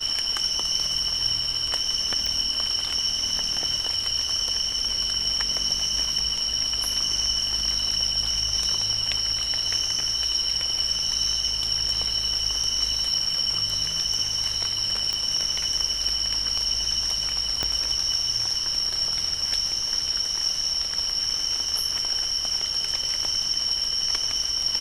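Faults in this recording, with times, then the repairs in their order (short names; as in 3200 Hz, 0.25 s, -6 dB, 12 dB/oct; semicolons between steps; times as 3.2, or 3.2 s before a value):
2.26 pop
15.13 pop -13 dBFS
17.63 pop -10 dBFS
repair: de-click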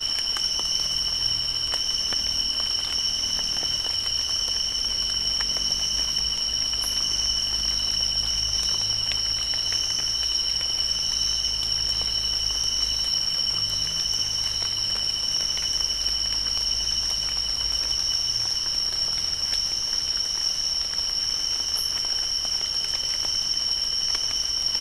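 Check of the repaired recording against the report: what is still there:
15.13 pop
17.63 pop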